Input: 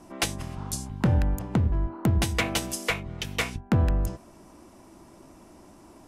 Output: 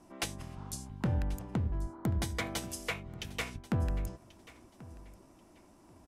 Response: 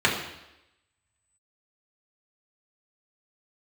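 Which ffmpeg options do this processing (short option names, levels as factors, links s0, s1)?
-filter_complex "[0:a]asettb=1/sr,asplit=3[s0][s1][s2];[s0]atrim=end=1.784[s3];[s1]atrim=start=1.78:end=2.58,asetpts=PTS-STARTPTS,afade=t=in:d=0.004:c=qsin,afade=t=out:st=0.796:d=0.004:c=qsin,bandreject=f=2700:w=5.4[s4];[s2]atrim=start=2.576[s5];[s3][s4]acrossfade=d=0.004:c1=hsin:c2=qsin[s6];[s6][s5]acrossfade=d=0.004:c1=qsin:c2=hsin,aecho=1:1:1086|2172:0.106|0.0233,volume=0.355"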